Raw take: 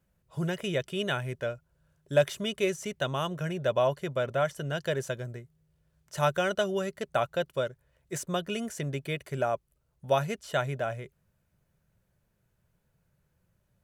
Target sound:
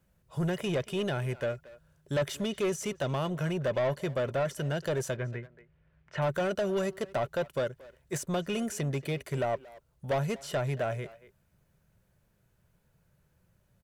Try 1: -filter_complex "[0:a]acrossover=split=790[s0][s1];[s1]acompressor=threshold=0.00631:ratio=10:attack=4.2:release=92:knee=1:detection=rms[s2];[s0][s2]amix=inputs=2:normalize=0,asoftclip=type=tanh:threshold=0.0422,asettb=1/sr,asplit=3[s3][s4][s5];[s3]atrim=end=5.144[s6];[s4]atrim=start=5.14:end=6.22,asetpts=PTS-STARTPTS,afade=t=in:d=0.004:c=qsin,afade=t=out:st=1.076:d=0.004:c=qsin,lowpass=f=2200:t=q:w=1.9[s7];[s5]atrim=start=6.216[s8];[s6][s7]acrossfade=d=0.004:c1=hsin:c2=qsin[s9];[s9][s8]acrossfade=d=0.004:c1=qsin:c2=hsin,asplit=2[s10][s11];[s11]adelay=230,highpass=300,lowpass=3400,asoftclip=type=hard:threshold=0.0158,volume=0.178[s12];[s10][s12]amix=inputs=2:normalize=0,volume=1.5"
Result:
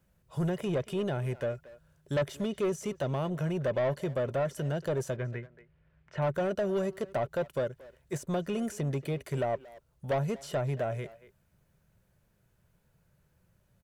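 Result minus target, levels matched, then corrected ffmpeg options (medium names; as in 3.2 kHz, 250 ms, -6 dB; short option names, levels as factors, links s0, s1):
compression: peak gain reduction +7.5 dB
-filter_complex "[0:a]acrossover=split=790[s0][s1];[s1]acompressor=threshold=0.0168:ratio=10:attack=4.2:release=92:knee=1:detection=rms[s2];[s0][s2]amix=inputs=2:normalize=0,asoftclip=type=tanh:threshold=0.0422,asettb=1/sr,asplit=3[s3][s4][s5];[s3]atrim=end=5.144[s6];[s4]atrim=start=5.14:end=6.22,asetpts=PTS-STARTPTS,afade=t=in:d=0.004:c=qsin,afade=t=out:st=1.076:d=0.004:c=qsin,lowpass=f=2200:t=q:w=1.9[s7];[s5]atrim=start=6.216[s8];[s6][s7]acrossfade=d=0.004:c1=hsin:c2=qsin[s9];[s9][s8]acrossfade=d=0.004:c1=qsin:c2=hsin,asplit=2[s10][s11];[s11]adelay=230,highpass=300,lowpass=3400,asoftclip=type=hard:threshold=0.0158,volume=0.178[s12];[s10][s12]amix=inputs=2:normalize=0,volume=1.5"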